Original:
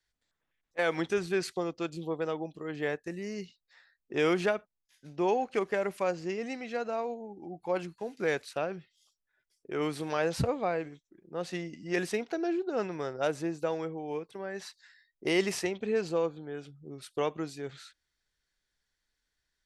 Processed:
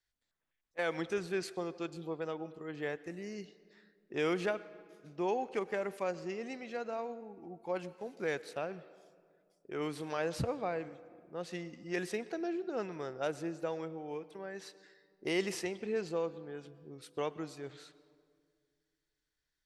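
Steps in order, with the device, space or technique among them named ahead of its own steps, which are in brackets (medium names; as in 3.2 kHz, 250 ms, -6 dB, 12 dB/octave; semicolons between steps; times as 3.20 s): filtered reverb send (on a send: high-pass 210 Hz + low-pass 7.6 kHz + reverberation RT60 2.0 s, pre-delay 99 ms, DRR 17 dB); on the sum: trim -5.5 dB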